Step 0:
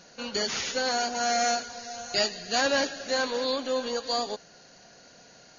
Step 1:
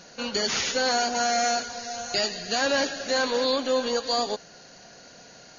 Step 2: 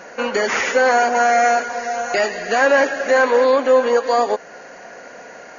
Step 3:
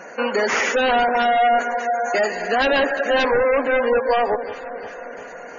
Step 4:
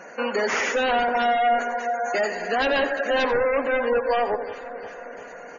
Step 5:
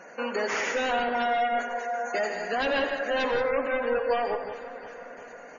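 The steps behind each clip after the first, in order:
peak limiter -19 dBFS, peak gain reduction 7 dB; trim +4.5 dB
graphic EQ 125/250/500/1000/2000/4000 Hz -4/+5/+9/+7/+11/-12 dB; in parallel at -2 dB: compression, threshold -24 dBFS, peak gain reduction 14 dB; on the sum: bass shelf 300 Hz -6 dB
wavefolder -12.5 dBFS; echo whose repeats swap between lows and highs 175 ms, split 1.1 kHz, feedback 79%, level -12.5 dB; spectral gate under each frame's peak -25 dB strong
delay 88 ms -14 dB; trim -4 dB
gated-style reverb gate 200 ms rising, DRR 7 dB; trim -5 dB

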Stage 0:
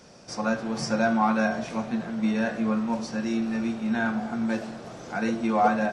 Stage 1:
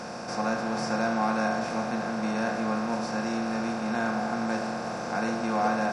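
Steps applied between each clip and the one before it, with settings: spectral levelling over time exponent 0.4; trim -7.5 dB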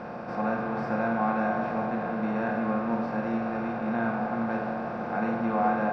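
distance through air 480 m; flutter echo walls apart 8.9 m, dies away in 0.33 s; reverberation RT60 2.7 s, pre-delay 82 ms, DRR 12.5 dB; trim +1 dB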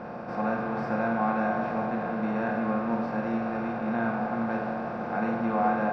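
tape noise reduction on one side only decoder only

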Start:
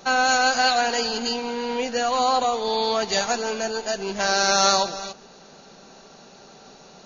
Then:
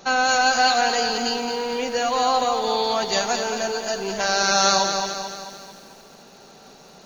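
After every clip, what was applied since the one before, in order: bit-crushed delay 220 ms, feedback 55%, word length 8-bit, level -7 dB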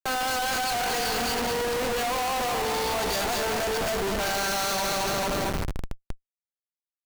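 resonant low shelf 140 Hz +13 dB, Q 1.5; Schmitt trigger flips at -33 dBFS; trim -3.5 dB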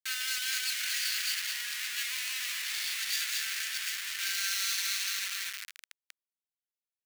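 steep high-pass 1.7 kHz 36 dB/octave; in parallel at -5 dB: bit crusher 8-bit; on the sum: trim -5 dB

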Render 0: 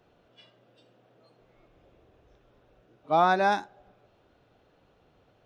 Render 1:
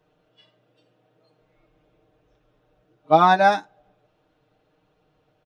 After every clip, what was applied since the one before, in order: comb 6.5 ms, depth 72%; upward expansion 1.5:1, over -38 dBFS; trim +6.5 dB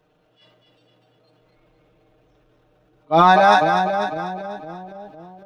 two-band feedback delay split 620 Hz, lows 507 ms, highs 246 ms, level -6.5 dB; transient shaper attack -9 dB, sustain +6 dB; trim +3.5 dB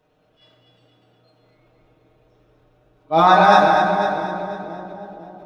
reverberation RT60 2.3 s, pre-delay 6 ms, DRR -1 dB; trim -2.5 dB

